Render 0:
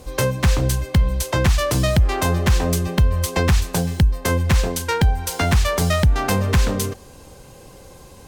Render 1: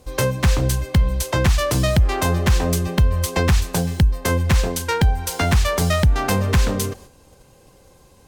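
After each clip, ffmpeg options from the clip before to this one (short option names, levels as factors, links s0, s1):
-af "agate=range=0.398:threshold=0.01:ratio=16:detection=peak"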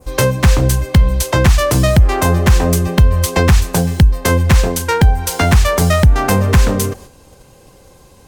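-af "adynamicequalizer=threshold=0.01:dfrequency=3800:dqfactor=0.99:tfrequency=3800:tqfactor=0.99:attack=5:release=100:ratio=0.375:range=2.5:mode=cutabove:tftype=bell,volume=2.11"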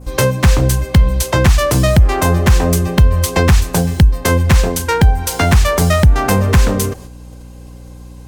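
-af "aeval=exprs='val(0)+0.0224*(sin(2*PI*60*n/s)+sin(2*PI*2*60*n/s)/2+sin(2*PI*3*60*n/s)/3+sin(2*PI*4*60*n/s)/4+sin(2*PI*5*60*n/s)/5)':c=same"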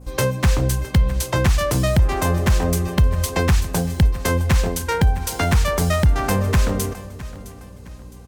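-af "aecho=1:1:662|1324|1986:0.141|0.0537|0.0204,volume=0.473"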